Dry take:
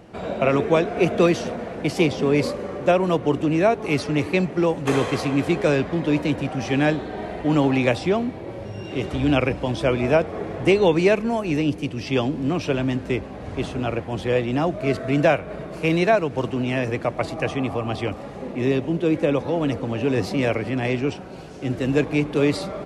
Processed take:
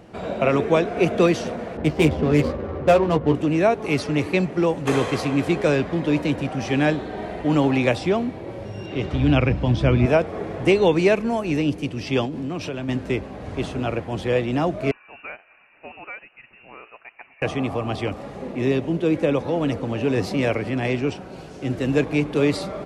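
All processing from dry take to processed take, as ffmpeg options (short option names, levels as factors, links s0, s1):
-filter_complex "[0:a]asettb=1/sr,asplit=3[s0][s1][s2];[s0]atrim=end=1.774[s3];[s1]atrim=start=1.77:end=3.35,asetpts=PTS-STARTPTS,afade=t=in:d=0.004:c=qsin,afade=t=out:st=1.576:d=0.004:c=qsin,equalizer=f=74:t=o:w=0.69:g=14,adynamicsmooth=sensitivity=2.5:basefreq=970,asplit=2[s4][s5];[s5]adelay=13,volume=0.562[s6];[s4][s6]amix=inputs=2:normalize=0,atrim=end_sample=69678[s7];[s2]atrim=start=3.346[s8];[s3][s7]acrossfade=d=0.004:c1=hsin:c2=qsin[s9];[s9][s8]acrossfade=d=0.004:c1=qsin:c2=hsin,asettb=1/sr,asplit=3[s10][s11][s12];[s10]atrim=end=8.864[s13];[s11]atrim=start=8.86:end=10.06,asetpts=PTS-STARTPTS,afade=t=in:d=0.004:c=qsin,afade=t=out:st=1.196:d=0.004:c=qsin,lowpass=5400,asubboost=boost=9:cutoff=240[s14];[s12]atrim=start=10.056[s15];[s13][s14]acrossfade=d=0.004:c1=hsin:c2=qsin[s16];[s16][s15]acrossfade=d=0.004:c1=qsin:c2=hsin,asettb=1/sr,asplit=3[s17][s18][s19];[s17]atrim=end=12.254[s20];[s18]atrim=start=12.25:end=12.89,asetpts=PTS-STARTPTS,afade=t=in:d=0.004:c=qsin,afade=t=out:st=0.636:d=0.004:c=qsin,highpass=57,acompressor=threshold=0.0562:ratio=5:attack=3.2:release=140:knee=1:detection=peak[s21];[s19]atrim=start=12.886[s22];[s20][s21]acrossfade=d=0.004:c1=hsin:c2=qsin[s23];[s23][s22]acrossfade=d=0.004:c1=qsin:c2=hsin,asettb=1/sr,asplit=3[s24][s25][s26];[s24]atrim=end=14.914[s27];[s25]atrim=start=14.91:end=17.42,asetpts=PTS-STARTPTS,afade=t=in:d=0.004:c=qsin,afade=t=out:st=2.506:d=0.004:c=qsin,aderivative,aeval=exprs='(tanh(7.08*val(0)+0.15)-tanh(0.15))/7.08':c=same,lowpass=f=2600:t=q:w=0.5098,lowpass=f=2600:t=q:w=0.6013,lowpass=f=2600:t=q:w=0.9,lowpass=f=2600:t=q:w=2.563,afreqshift=-3000[s28];[s26]atrim=start=17.416[s29];[s27][s28]acrossfade=d=0.004:c1=hsin:c2=qsin[s30];[s30][s29]acrossfade=d=0.004:c1=qsin:c2=hsin"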